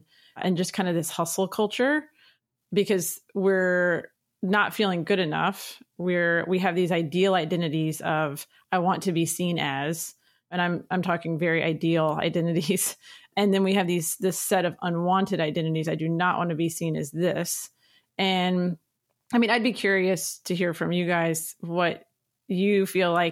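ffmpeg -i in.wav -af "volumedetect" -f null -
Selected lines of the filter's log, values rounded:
mean_volume: -25.6 dB
max_volume: -9.2 dB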